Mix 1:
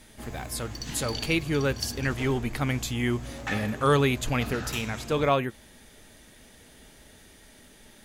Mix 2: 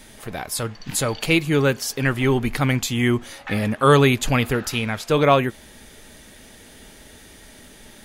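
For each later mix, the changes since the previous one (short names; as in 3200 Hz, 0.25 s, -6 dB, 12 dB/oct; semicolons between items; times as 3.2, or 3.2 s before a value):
speech +7.5 dB; background: add three-band isolator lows -23 dB, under 530 Hz, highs -19 dB, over 4300 Hz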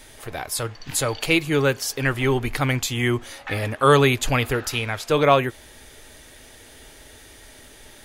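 speech: add bell 200 Hz -15 dB 0.43 oct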